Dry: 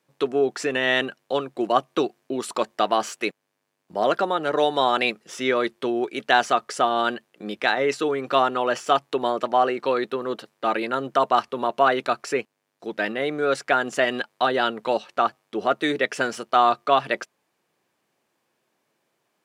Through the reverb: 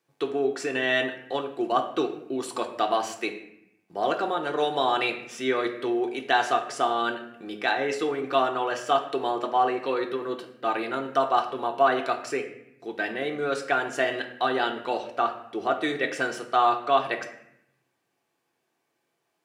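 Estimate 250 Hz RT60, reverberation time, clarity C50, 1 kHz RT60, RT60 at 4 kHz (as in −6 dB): 1.0 s, 0.75 s, 9.5 dB, 0.75 s, 0.55 s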